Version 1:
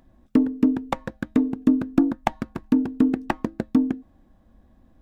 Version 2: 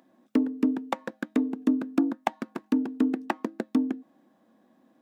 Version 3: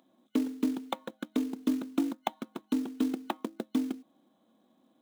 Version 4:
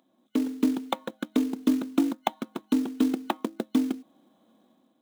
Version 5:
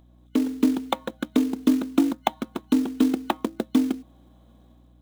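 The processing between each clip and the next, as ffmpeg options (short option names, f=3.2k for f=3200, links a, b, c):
-filter_complex "[0:a]highpass=f=220:w=0.5412,highpass=f=220:w=1.3066,asplit=2[a][b];[b]acompressor=threshold=-28dB:ratio=6,volume=1dB[c];[a][c]amix=inputs=2:normalize=0,volume=-6.5dB"
-af "superequalizer=11b=0.501:13b=2.51:14b=0.355,acrusher=bits=5:mode=log:mix=0:aa=0.000001,volume=-5dB"
-af "dynaudnorm=f=110:g=7:m=7dB,volume=-1.5dB"
-af "aeval=exprs='val(0)+0.00141*(sin(2*PI*60*n/s)+sin(2*PI*2*60*n/s)/2+sin(2*PI*3*60*n/s)/3+sin(2*PI*4*60*n/s)/4+sin(2*PI*5*60*n/s)/5)':c=same,volume=3.5dB"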